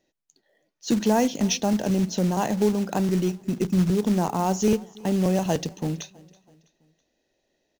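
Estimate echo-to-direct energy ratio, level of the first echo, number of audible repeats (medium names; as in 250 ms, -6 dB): -22.5 dB, -23.5 dB, 2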